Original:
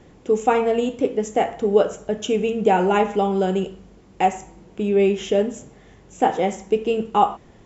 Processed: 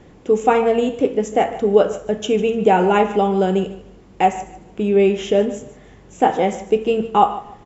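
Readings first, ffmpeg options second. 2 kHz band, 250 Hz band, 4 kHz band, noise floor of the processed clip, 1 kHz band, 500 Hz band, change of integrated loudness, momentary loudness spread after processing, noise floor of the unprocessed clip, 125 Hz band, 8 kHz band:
+3.0 dB, +3.0 dB, +2.5 dB, −46 dBFS, +3.0 dB, +3.0 dB, +3.0 dB, 7 LU, −50 dBFS, +3.0 dB, can't be measured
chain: -af "bass=frequency=250:gain=0,treble=frequency=4000:gain=-3,aecho=1:1:149|298|447:0.158|0.0412|0.0107,volume=3dB"

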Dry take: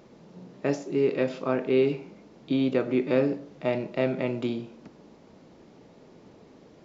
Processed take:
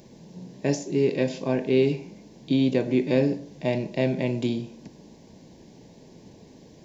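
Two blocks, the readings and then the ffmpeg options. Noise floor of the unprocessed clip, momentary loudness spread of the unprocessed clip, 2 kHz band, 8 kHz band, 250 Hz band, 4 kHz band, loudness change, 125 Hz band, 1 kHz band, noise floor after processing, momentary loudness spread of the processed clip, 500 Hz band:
−54 dBFS, 8 LU, +1.0 dB, can't be measured, +3.0 dB, +4.5 dB, +2.0 dB, +6.5 dB, −1.5 dB, −51 dBFS, 11 LU, +1.0 dB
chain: -af "asuperstop=centerf=1300:order=4:qfactor=3,bass=frequency=250:gain=7,treble=frequency=4000:gain=12"

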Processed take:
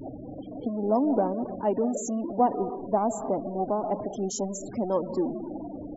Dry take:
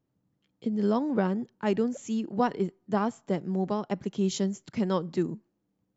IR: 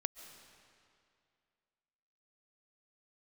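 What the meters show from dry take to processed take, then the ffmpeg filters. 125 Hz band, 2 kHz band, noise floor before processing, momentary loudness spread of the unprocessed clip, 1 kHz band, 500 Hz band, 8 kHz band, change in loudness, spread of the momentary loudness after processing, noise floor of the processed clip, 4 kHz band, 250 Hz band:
−5.0 dB, below −10 dB, −78 dBFS, 6 LU, +5.0 dB, +3.0 dB, can't be measured, +1.0 dB, 11 LU, −40 dBFS, −7.5 dB, −0.5 dB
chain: -filter_complex "[0:a]aeval=exprs='val(0)+0.5*0.0335*sgn(val(0))':channel_layout=same[link_01];[1:a]atrim=start_sample=2205,afade=type=out:start_time=0.38:duration=0.01,atrim=end_sample=17199[link_02];[link_01][link_02]afir=irnorm=-1:irlink=0,afftfilt=real='re*gte(hypot(re,im),0.0282)':imag='im*gte(hypot(re,im),0.0282)':win_size=1024:overlap=0.75,firequalizer=gain_entry='entry(110,0);entry(170,-7);entry(270,9);entry(390,3);entry(680,13);entry(1400,-7);entry(3800,-11);entry(5700,5)':delay=0.05:min_phase=1,volume=-4.5dB"

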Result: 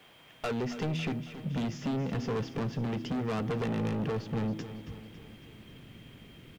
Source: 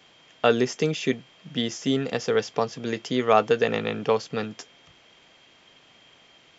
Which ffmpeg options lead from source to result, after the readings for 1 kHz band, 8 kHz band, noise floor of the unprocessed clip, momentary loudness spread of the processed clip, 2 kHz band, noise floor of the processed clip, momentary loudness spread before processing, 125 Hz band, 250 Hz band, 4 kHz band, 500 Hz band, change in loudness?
−12.5 dB, can't be measured, −57 dBFS, 19 LU, −11.0 dB, −57 dBFS, 11 LU, +2.0 dB, −4.0 dB, −12.0 dB, −12.5 dB, −8.5 dB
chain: -af "lowpass=3200,bandreject=frequency=80.64:width_type=h:width=4,bandreject=frequency=161.28:width_type=h:width=4,bandreject=frequency=241.92:width_type=h:width=4,bandreject=frequency=322.56:width_type=h:width=4,asubboost=boost=11:cutoff=230,acompressor=threshold=-21dB:ratio=6,asoftclip=type=tanh:threshold=-25.5dB,acrusher=bits=10:mix=0:aa=0.000001,asoftclip=type=hard:threshold=-29dB,aecho=1:1:276|552|828|1104|1380|1656:0.224|0.13|0.0753|0.0437|0.0253|0.0147"

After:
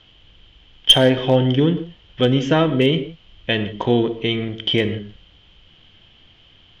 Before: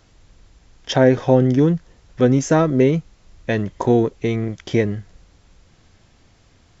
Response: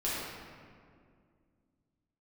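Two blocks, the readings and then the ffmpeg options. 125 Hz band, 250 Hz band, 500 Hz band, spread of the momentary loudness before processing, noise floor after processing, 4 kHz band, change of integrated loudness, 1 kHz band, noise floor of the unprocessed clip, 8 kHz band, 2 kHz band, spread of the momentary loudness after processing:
−1.5 dB, −1.5 dB, −1.5 dB, 10 LU, −52 dBFS, +16.5 dB, +0.5 dB, −1.0 dB, −55 dBFS, can't be measured, +3.0 dB, 13 LU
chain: -filter_complex "[0:a]lowpass=frequency=3100:width_type=q:width=15,aeval=exprs='clip(val(0),-1,0.708)':channel_layout=same,asplit=2[link_01][link_02];[1:a]atrim=start_sample=2205,afade=type=out:start_time=0.22:duration=0.01,atrim=end_sample=10143[link_03];[link_02][link_03]afir=irnorm=-1:irlink=0,volume=-14.5dB[link_04];[link_01][link_04]amix=inputs=2:normalize=0,volume=-3dB"

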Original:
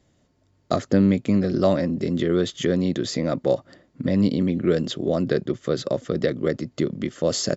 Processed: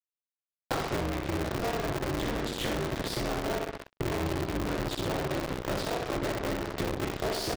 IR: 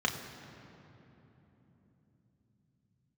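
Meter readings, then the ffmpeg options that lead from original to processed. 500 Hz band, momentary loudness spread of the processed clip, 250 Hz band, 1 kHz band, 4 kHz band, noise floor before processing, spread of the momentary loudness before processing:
−9.5 dB, 2 LU, −12.5 dB, +1.0 dB, −3.5 dB, −64 dBFS, 7 LU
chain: -filter_complex "[0:a]flanger=delay=17.5:depth=2.3:speed=2.2,equalizer=frequency=760:width=4.1:gain=-4,acrossover=split=140|2400[link_01][link_02][link_03];[link_02]adynamicsmooth=sensitivity=7.5:basefreq=1900[link_04];[link_01][link_04][link_03]amix=inputs=3:normalize=0,highpass=100,equalizer=frequency=160:width_type=q:width=4:gain=8,equalizer=frequency=230:width_type=q:width=4:gain=8,equalizer=frequency=880:width_type=q:width=4:gain=-3,lowpass=frequency=4700:width=0.5412,lowpass=frequency=4700:width=1.3066,asplit=2[link_05][link_06];[link_06]highpass=frequency=720:poles=1,volume=23dB,asoftclip=type=tanh:threshold=-7dB[link_07];[link_05][link_07]amix=inputs=2:normalize=0,lowpass=frequency=3000:poles=1,volume=-6dB,bandreject=frequency=360:width=12,asplit=2[link_08][link_09];[link_09]aecho=0:1:63|126|189|252|315|378|441|504:0.668|0.381|0.217|0.124|0.0706|0.0402|0.0229|0.0131[link_10];[link_08][link_10]amix=inputs=2:normalize=0,aeval=exprs='sgn(val(0))*max(abs(val(0))-0.00398,0)':channel_layout=same,acompressor=threshold=-27dB:ratio=8,acrusher=bits=4:mix=0:aa=0.5,aeval=exprs='val(0)*sgn(sin(2*PI*120*n/s))':channel_layout=same,volume=-2.5dB"

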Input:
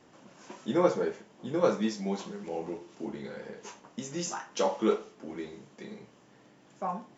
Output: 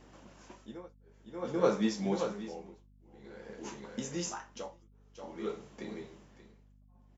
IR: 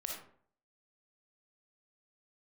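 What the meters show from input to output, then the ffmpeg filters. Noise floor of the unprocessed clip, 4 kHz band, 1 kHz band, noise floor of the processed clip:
−59 dBFS, −3.5 dB, −7.5 dB, −61 dBFS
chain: -af "aecho=1:1:582:0.422,tremolo=f=0.51:d=1,aeval=exprs='val(0)+0.001*(sin(2*PI*50*n/s)+sin(2*PI*2*50*n/s)/2+sin(2*PI*3*50*n/s)/3+sin(2*PI*4*50*n/s)/4+sin(2*PI*5*50*n/s)/5)':channel_layout=same"

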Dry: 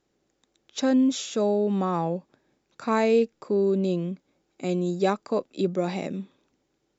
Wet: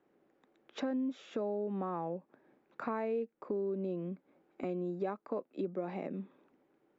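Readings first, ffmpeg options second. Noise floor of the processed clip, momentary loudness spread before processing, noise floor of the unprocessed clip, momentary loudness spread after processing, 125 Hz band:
−75 dBFS, 13 LU, −75 dBFS, 9 LU, −13.5 dB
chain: -filter_complex "[0:a]acrossover=split=170 2400:gain=0.126 1 0.1[link_01][link_02][link_03];[link_01][link_02][link_03]amix=inputs=3:normalize=0,acompressor=threshold=-42dB:ratio=3,highshelf=frequency=6700:gain=-11,volume=3.5dB"

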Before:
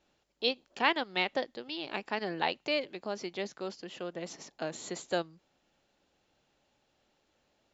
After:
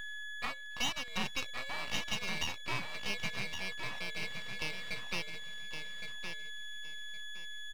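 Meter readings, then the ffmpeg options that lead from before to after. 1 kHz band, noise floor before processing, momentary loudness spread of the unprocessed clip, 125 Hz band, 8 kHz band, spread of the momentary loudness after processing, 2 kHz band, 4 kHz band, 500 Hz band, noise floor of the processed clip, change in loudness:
−8.0 dB, −75 dBFS, 11 LU, +2.0 dB, can't be measured, 9 LU, 0.0 dB, 0.0 dB, −14.0 dB, −44 dBFS, −4.0 dB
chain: -filter_complex "[0:a]afftfilt=real='real(if(lt(b,920),b+92*(1-2*mod(floor(b/92),2)),b),0)':imag='imag(if(lt(b,920),b+92*(1-2*mod(floor(b/92),2)),b),0)':win_size=2048:overlap=0.75,aeval=exprs='val(0)+0.0112*sin(2*PI*1700*n/s)':channel_layout=same,aecho=1:1:1:0.71,asubboost=boost=10.5:cutoff=190,acrossover=split=520[link_01][link_02];[link_02]acontrast=78[link_03];[link_01][link_03]amix=inputs=2:normalize=0,alimiter=limit=-15.5dB:level=0:latency=1:release=409,acompressor=mode=upward:threshold=-37dB:ratio=2.5,afftfilt=real='re*between(b*sr/4096,110,3900)':imag='im*between(b*sr/4096,110,3900)':win_size=4096:overlap=0.75,aeval=exprs='max(val(0),0)':channel_layout=same,aecho=1:1:1115|2230|3345:0.447|0.0983|0.0216,volume=-4dB"

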